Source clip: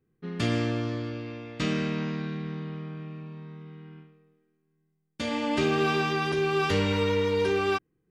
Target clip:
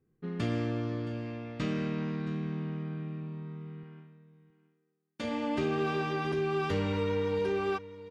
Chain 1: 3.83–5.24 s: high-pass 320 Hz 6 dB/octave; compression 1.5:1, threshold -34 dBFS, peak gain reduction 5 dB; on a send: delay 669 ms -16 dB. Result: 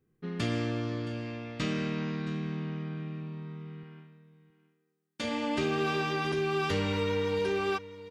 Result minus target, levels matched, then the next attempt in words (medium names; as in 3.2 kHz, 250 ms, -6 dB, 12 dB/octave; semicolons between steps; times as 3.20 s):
4 kHz band +5.0 dB
3.83–5.24 s: high-pass 320 Hz 6 dB/octave; compression 1.5:1, threshold -34 dBFS, peak gain reduction 5 dB; treble shelf 2.1 kHz -8.5 dB; on a send: delay 669 ms -16 dB